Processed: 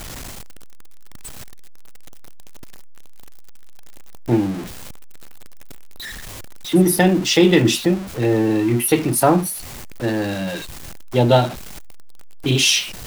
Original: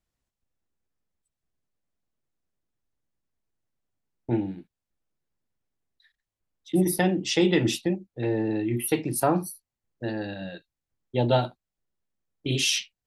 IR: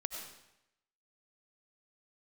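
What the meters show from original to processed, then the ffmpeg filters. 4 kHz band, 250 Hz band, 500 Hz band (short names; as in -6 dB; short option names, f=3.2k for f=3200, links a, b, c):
+9.0 dB, +8.5 dB, +8.5 dB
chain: -filter_complex "[0:a]aeval=exprs='val(0)+0.5*0.0211*sgn(val(0))':c=same,asplit=2[a][b];[1:a]atrim=start_sample=2205,atrim=end_sample=3528[c];[b][c]afir=irnorm=-1:irlink=0,volume=-13dB[d];[a][d]amix=inputs=2:normalize=0,volume=6dB"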